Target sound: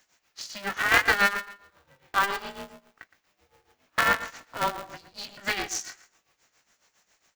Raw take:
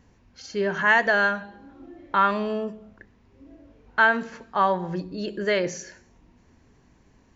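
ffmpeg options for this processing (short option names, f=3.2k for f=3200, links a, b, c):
-filter_complex "[0:a]highpass=750,aemphasis=mode=production:type=bsi,asplit=2[a][b];[b]adelay=115,lowpass=f=2.3k:p=1,volume=-12dB,asplit=2[c][d];[d]adelay=115,lowpass=f=2.3k:p=1,volume=0.25,asplit=2[e][f];[f]adelay=115,lowpass=f=2.3k:p=1,volume=0.25[g];[a][c][e][g]amix=inputs=4:normalize=0,tremolo=f=7.3:d=0.77,equalizer=f=980:t=o:w=0.77:g=-4,asplit=2[h][i];[i]adelay=18,volume=-8dB[j];[h][j]amix=inputs=2:normalize=0,aeval=exprs='val(0)*sgn(sin(2*PI*200*n/s))':c=same,volume=1.5dB"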